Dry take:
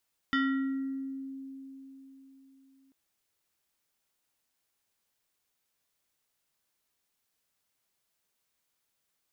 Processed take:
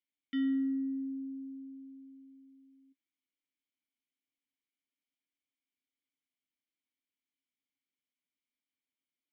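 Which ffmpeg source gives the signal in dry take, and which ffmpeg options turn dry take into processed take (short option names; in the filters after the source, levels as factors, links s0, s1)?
-f lavfi -i "aevalsrc='0.0668*pow(10,-3*t/4.04)*sin(2*PI*269*t+1.4*pow(10,-3*t/1.17)*sin(2*PI*6.11*269*t))':d=2.59:s=44100"
-filter_complex "[0:a]asplit=3[s0][s1][s2];[s0]bandpass=f=270:t=q:w=8,volume=1[s3];[s1]bandpass=f=2290:t=q:w=8,volume=0.501[s4];[s2]bandpass=f=3010:t=q:w=8,volume=0.355[s5];[s3][s4][s5]amix=inputs=3:normalize=0"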